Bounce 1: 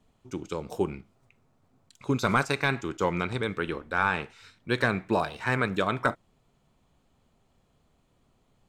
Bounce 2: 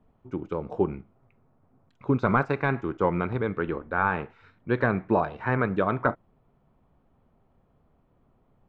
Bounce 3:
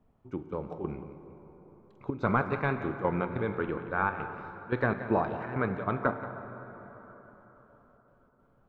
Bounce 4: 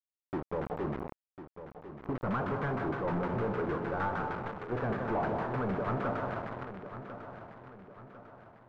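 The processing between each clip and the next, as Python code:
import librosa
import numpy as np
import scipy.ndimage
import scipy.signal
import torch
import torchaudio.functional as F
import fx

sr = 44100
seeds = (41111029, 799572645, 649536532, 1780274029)

y1 = scipy.signal.sosfilt(scipy.signal.butter(2, 1400.0, 'lowpass', fs=sr, output='sos'), x)
y1 = F.gain(torch.from_numpy(y1), 3.0).numpy()
y2 = fx.step_gate(y1, sr, bpm=143, pattern='xxxx.xx.', floor_db=-12.0, edge_ms=4.5)
y2 = y2 + 10.0 ** (-13.0 / 20.0) * np.pad(y2, (int(178 * sr / 1000.0), 0))[:len(y2)]
y2 = fx.rev_plate(y2, sr, seeds[0], rt60_s=4.5, hf_ratio=0.5, predelay_ms=0, drr_db=9.0)
y2 = F.gain(torch.from_numpy(y2), -4.0).numpy()
y3 = fx.quant_companded(y2, sr, bits=2)
y3 = fx.filter_lfo_lowpass(y3, sr, shape='saw_down', hz=6.5, low_hz=760.0, high_hz=1700.0, q=1.1)
y3 = fx.echo_feedback(y3, sr, ms=1049, feedback_pct=44, wet_db=-12.0)
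y3 = F.gain(torch.from_numpy(y3), -5.5).numpy()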